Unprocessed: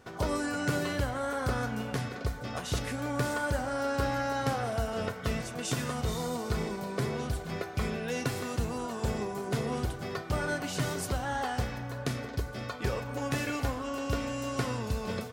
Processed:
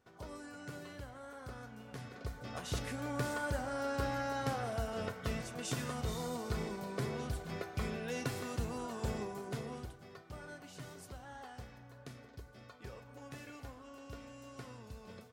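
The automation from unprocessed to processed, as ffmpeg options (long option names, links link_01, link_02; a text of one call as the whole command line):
ffmpeg -i in.wav -af "volume=-6dB,afade=type=in:start_time=1.81:duration=0.89:silence=0.281838,afade=type=out:start_time=9.15:duration=0.86:silence=0.266073" out.wav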